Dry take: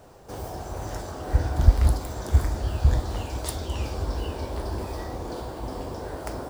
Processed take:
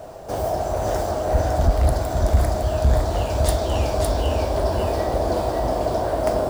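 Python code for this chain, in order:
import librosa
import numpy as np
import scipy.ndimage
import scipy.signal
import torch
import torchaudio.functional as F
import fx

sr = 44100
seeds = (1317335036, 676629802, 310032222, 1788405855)

p1 = fx.peak_eq(x, sr, hz=640.0, db=13.0, octaves=0.38)
p2 = fx.rider(p1, sr, range_db=5, speed_s=0.5)
p3 = p1 + F.gain(torch.from_numpy(p2), -2.5).numpy()
p4 = 10.0 ** (-9.5 / 20.0) * np.tanh(p3 / 10.0 ** (-9.5 / 20.0))
y = p4 + 10.0 ** (-3.5 / 20.0) * np.pad(p4, (int(558 * sr / 1000.0), 0))[:len(p4)]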